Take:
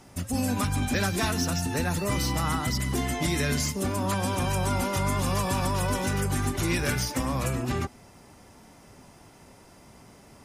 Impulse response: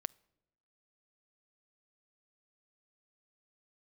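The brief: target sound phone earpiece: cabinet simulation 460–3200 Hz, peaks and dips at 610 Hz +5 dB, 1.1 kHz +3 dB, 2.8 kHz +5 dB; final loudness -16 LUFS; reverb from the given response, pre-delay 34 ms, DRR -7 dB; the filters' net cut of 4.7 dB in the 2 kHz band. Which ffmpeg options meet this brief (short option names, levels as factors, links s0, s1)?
-filter_complex "[0:a]equalizer=f=2000:t=o:g=-7.5,asplit=2[s0][s1];[1:a]atrim=start_sample=2205,adelay=34[s2];[s1][s2]afir=irnorm=-1:irlink=0,volume=2.82[s3];[s0][s3]amix=inputs=2:normalize=0,highpass=460,equalizer=f=610:t=q:w=4:g=5,equalizer=f=1100:t=q:w=4:g=3,equalizer=f=2800:t=q:w=4:g=5,lowpass=f=3200:w=0.5412,lowpass=f=3200:w=1.3066,volume=2.82"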